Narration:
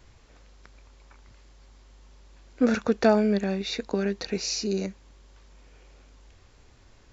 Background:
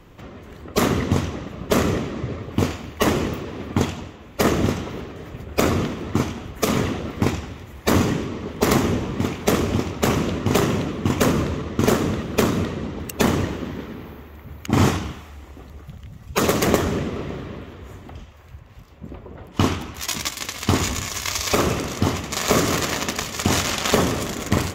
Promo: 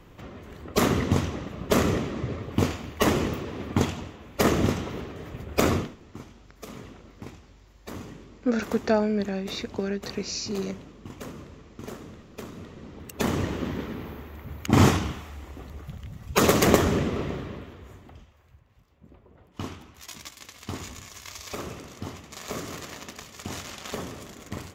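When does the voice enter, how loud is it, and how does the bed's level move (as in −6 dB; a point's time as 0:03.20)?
5.85 s, −2.5 dB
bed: 0:05.75 −3 dB
0:05.98 −21 dB
0:12.48 −21 dB
0:13.65 −0.5 dB
0:17.23 −0.5 dB
0:18.72 −16 dB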